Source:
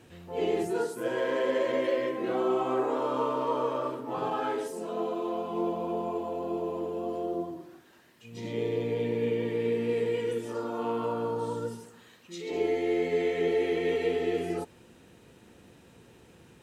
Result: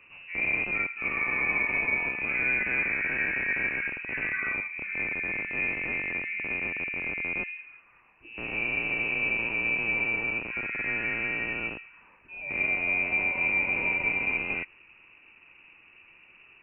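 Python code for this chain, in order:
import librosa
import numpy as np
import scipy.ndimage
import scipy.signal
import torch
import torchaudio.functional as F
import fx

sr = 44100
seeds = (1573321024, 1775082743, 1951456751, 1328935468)

y = fx.rattle_buzz(x, sr, strikes_db=-40.0, level_db=-25.0)
y = fx.freq_invert(y, sr, carrier_hz=2800)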